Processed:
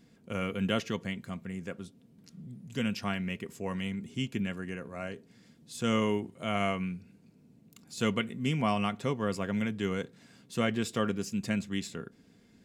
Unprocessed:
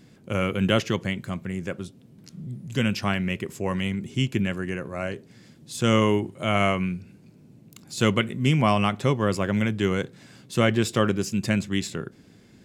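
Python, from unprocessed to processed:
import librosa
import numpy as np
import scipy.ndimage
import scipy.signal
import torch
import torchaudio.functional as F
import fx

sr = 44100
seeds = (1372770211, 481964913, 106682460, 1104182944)

y = x + 0.35 * np.pad(x, (int(4.3 * sr / 1000.0), 0))[:len(x)]
y = y * 10.0 ** (-8.5 / 20.0)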